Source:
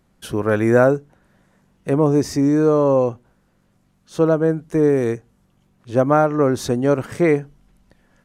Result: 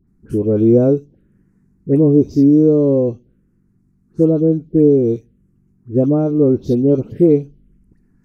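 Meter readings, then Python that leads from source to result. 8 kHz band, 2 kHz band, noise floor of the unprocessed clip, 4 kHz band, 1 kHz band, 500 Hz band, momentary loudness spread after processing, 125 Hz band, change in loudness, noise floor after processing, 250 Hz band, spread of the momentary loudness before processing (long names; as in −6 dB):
below −15 dB, below −20 dB, −62 dBFS, below −10 dB, below −10 dB, +2.0 dB, 9 LU, +4.5 dB, +3.5 dB, −58 dBFS, +6.0 dB, 9 LU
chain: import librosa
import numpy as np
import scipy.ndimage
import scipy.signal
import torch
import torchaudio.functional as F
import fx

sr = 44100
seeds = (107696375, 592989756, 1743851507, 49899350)

y = fx.env_phaser(x, sr, low_hz=550.0, high_hz=1800.0, full_db=-16.0)
y = fx.low_shelf_res(y, sr, hz=590.0, db=14.0, q=1.5)
y = fx.dispersion(y, sr, late='highs', ms=77.0, hz=1600.0)
y = y * librosa.db_to_amplitude(-10.0)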